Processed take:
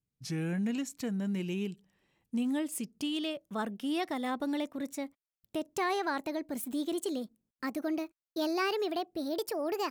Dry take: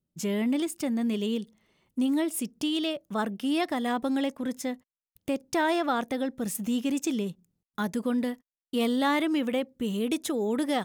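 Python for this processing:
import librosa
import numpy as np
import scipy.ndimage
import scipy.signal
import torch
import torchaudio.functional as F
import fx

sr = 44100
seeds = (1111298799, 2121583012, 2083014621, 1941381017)

y = fx.speed_glide(x, sr, from_pct=77, to_pct=142)
y = y * librosa.db_to_amplitude(-5.5)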